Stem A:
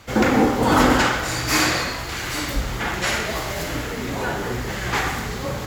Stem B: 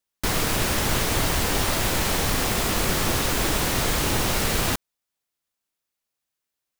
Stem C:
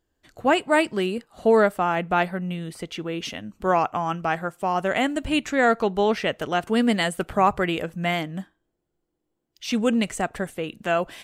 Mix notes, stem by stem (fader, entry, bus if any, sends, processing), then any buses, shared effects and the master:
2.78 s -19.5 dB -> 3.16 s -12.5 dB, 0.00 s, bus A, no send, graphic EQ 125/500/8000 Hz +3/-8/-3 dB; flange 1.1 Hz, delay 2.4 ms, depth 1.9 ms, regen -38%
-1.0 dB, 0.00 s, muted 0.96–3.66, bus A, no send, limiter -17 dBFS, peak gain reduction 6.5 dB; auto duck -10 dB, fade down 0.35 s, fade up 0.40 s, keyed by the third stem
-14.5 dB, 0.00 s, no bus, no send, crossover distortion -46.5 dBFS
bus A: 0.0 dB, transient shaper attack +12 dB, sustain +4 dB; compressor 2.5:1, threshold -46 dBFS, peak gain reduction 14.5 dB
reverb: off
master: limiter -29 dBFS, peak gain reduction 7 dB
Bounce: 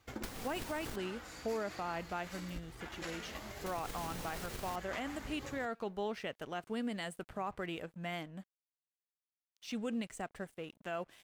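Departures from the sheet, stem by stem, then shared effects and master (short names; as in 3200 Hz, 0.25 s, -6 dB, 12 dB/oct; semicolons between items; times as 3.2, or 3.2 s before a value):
stem A: missing graphic EQ 125/500/8000 Hz +3/-8/-3 dB; stem B: missing limiter -17 dBFS, peak gain reduction 6.5 dB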